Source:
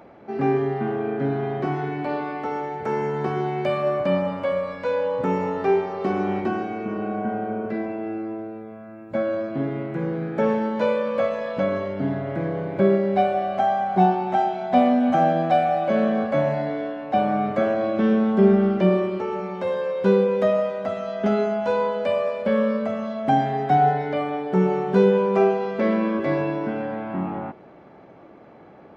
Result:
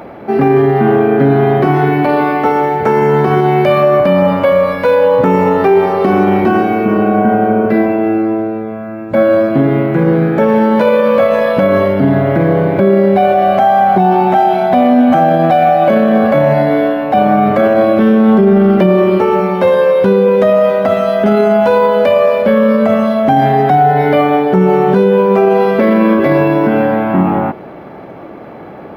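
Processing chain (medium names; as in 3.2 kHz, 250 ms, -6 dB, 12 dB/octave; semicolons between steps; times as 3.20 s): loudness maximiser +17.5 dB; decimation joined by straight lines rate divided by 3×; trim -1 dB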